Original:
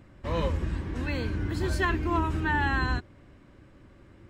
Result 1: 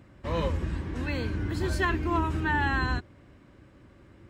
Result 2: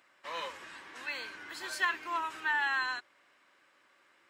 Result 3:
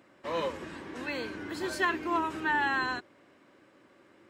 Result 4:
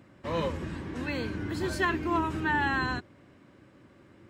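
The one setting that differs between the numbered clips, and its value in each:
HPF, cutoff: 43, 1100, 350, 130 Hz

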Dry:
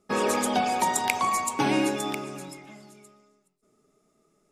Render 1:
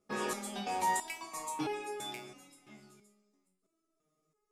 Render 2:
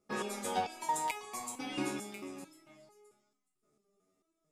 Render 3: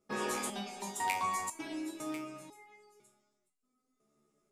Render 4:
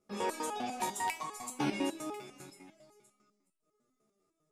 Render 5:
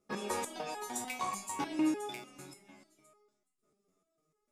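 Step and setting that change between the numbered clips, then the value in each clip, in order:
stepped resonator, rate: 3, 4.5, 2, 10, 6.7 Hz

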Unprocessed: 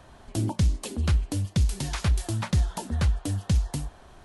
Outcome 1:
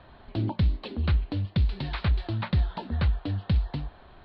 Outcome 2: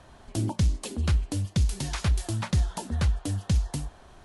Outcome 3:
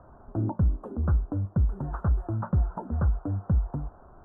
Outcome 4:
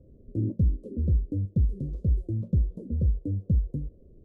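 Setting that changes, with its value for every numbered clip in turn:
elliptic low-pass, frequency: 4200, 11000, 1400, 510 Hz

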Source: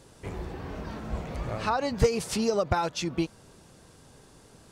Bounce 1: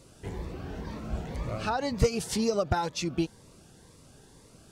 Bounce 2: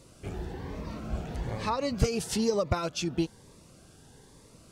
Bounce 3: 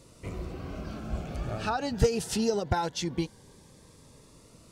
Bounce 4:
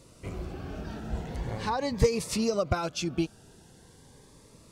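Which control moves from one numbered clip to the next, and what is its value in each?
cascading phaser, rate: 2, 1.1, 0.22, 0.42 Hz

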